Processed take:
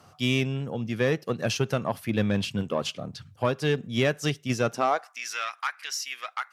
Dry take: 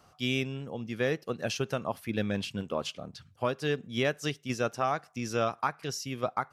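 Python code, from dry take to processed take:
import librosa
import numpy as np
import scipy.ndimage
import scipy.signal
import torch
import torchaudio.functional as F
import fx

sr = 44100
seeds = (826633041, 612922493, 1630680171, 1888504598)

y = fx.cheby_harmonics(x, sr, harmonics=(5, 8), levels_db=(-23, -31), full_scale_db=-15.0)
y = fx.filter_sweep_highpass(y, sr, from_hz=100.0, to_hz=1800.0, start_s=4.66, end_s=5.2, q=1.6)
y = y * 10.0 ** (2.5 / 20.0)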